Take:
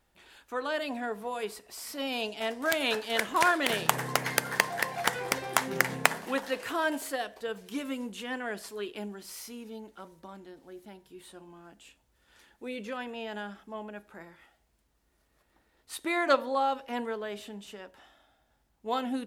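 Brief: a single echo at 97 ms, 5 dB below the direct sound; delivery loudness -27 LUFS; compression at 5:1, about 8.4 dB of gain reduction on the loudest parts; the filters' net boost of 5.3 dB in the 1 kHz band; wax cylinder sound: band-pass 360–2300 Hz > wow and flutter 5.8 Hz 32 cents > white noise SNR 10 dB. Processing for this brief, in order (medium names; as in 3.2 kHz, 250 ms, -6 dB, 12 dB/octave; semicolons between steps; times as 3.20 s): peaking EQ 1 kHz +7 dB; compression 5:1, threshold -27 dBFS; band-pass 360–2300 Hz; delay 97 ms -5 dB; wow and flutter 5.8 Hz 32 cents; white noise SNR 10 dB; trim +8 dB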